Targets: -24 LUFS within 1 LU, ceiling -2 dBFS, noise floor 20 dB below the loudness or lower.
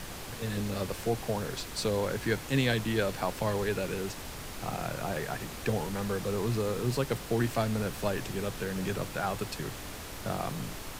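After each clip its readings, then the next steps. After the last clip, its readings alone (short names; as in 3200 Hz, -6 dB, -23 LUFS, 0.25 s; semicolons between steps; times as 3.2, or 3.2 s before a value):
noise floor -42 dBFS; noise floor target -53 dBFS; loudness -32.5 LUFS; peak -14.5 dBFS; loudness target -24.0 LUFS
-> noise print and reduce 11 dB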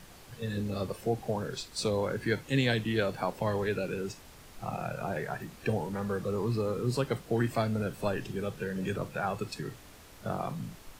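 noise floor -52 dBFS; noise floor target -53 dBFS
-> noise print and reduce 6 dB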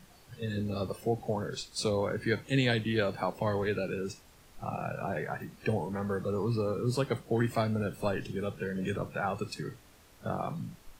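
noise floor -58 dBFS; loudness -33.0 LUFS; peak -15.5 dBFS; loudness target -24.0 LUFS
-> gain +9 dB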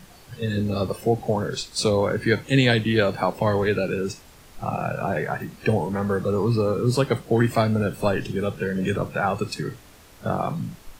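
loudness -24.0 LUFS; peak -6.5 dBFS; noise floor -49 dBFS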